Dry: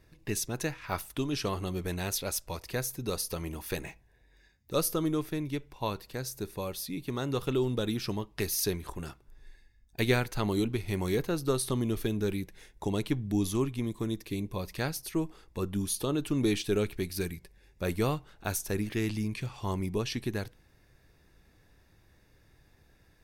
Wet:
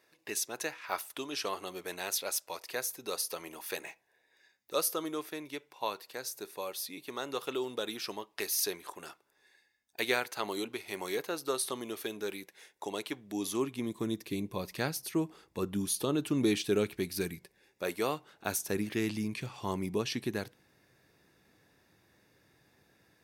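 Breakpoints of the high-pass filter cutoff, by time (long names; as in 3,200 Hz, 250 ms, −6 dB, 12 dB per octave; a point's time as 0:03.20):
0:13.23 490 Hz
0:14.09 150 Hz
0:17.32 150 Hz
0:17.97 410 Hz
0:18.57 160 Hz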